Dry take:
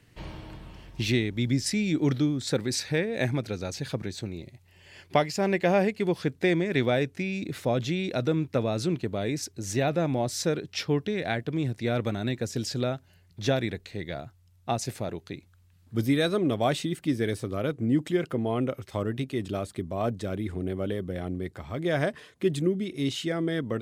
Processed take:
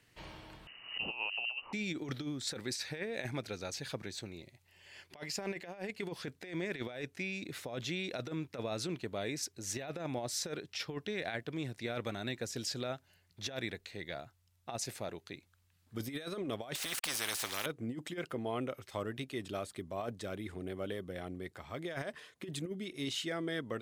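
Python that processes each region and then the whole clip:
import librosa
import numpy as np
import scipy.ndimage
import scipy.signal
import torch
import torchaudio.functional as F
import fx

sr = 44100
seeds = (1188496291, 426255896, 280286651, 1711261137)

y = fx.chain(x, sr, fx.low_shelf(hz=480.0, db=-6.5),
    fx.freq_invert(carrier_hz=2900),
    fx.pre_swell(db_per_s=100.0), at=(0.67, 1.73))
y = fx.chain(y, sr, fx.sample_gate(floor_db=-49.0),
    fx.spectral_comp(ratio=4.0), at=(16.75, 17.66))
y = fx.low_shelf(y, sr, hz=430.0, db=-10.5)
y = fx.over_compress(y, sr, threshold_db=-32.0, ratio=-0.5)
y = F.gain(torch.from_numpy(y), -5.0).numpy()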